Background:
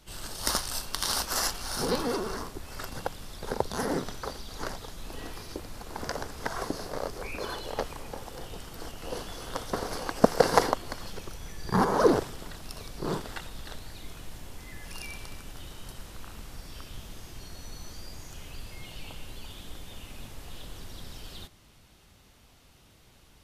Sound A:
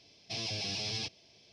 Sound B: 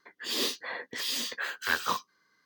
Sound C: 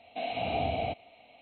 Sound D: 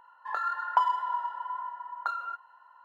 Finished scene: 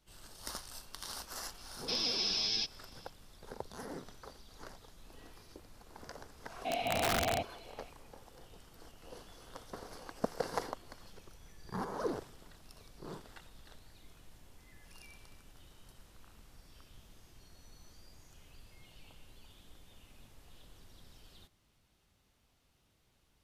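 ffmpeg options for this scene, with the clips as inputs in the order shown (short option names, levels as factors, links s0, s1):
-filter_complex "[0:a]volume=0.178[s0];[1:a]highpass=f=160:w=0.5412,highpass=f=160:w=1.3066,equalizer=f=580:t=q:w=4:g=-4,equalizer=f=1500:t=q:w=4:g=7,equalizer=f=3600:t=q:w=4:g=7,equalizer=f=5200:t=q:w=4:g=10,lowpass=f=7300:w=0.5412,lowpass=f=7300:w=1.3066[s1];[3:a]aeval=exprs='(mod(15*val(0)+1,2)-1)/15':c=same[s2];[s1]atrim=end=1.52,asetpts=PTS-STARTPTS,volume=0.631,afade=t=in:d=0.004:c=hsin,afade=t=out:st=1.516:d=0.004:c=hsin,adelay=1580[s3];[s2]atrim=end=1.41,asetpts=PTS-STARTPTS,volume=0.891,afade=t=in:d=0.004:c=hsin,afade=t=out:st=1.406:d=0.004:c=hsin,adelay=6490[s4];[s0][s3][s4]amix=inputs=3:normalize=0"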